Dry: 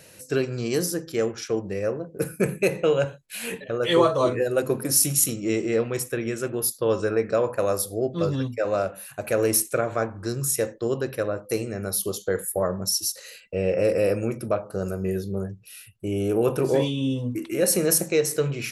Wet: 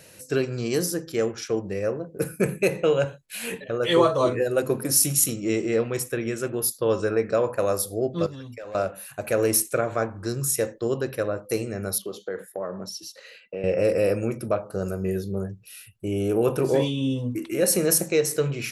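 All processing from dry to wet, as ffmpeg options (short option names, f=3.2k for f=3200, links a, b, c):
-filter_complex "[0:a]asettb=1/sr,asplit=3[a][b][c];[a]atrim=end=8.264[d];[b]atrim=start=8.26:end=8.75,asetpts=PTS-STARTPTS,afade=t=in:d=0.004:c=qsin,afade=t=out:st=0.486:d=0.004:c=qsin,equalizer=f=190:w=0.4:g=-5.5,volume=22dB,asoftclip=hard,volume=-22dB,acompressor=threshold=-34dB:ratio=12:attack=3.2:release=140:knee=1:detection=peak[e];[c]atrim=start=8.746[f];[d][e]acrossfade=d=0.004:c1=hsin:c2=qsin[g];[g][f]acrossfade=d=0.004:c1=qsin:c2=hsin,asettb=1/sr,asplit=3[h][i][j];[h]atrim=end=11.984[k];[i]atrim=start=11.98:end=13.64,asetpts=PTS-STARTPTS,afade=t=in:d=0.004:c=qsin,afade=t=out:st=1.656:d=0.004:c=qsin,acrossover=split=160 4100:gain=0.112 1 0.1[l][m][n];[l][m][n]amix=inputs=3:normalize=0,acompressor=threshold=-29dB:ratio=2.5:attack=3.2:release=140:knee=1:detection=peak[o];[j]atrim=start=13.636[p];[k][o]acrossfade=d=0.004:c1=hsin:c2=qsin[q];[q][p]acrossfade=d=0.004:c1=qsin:c2=hsin"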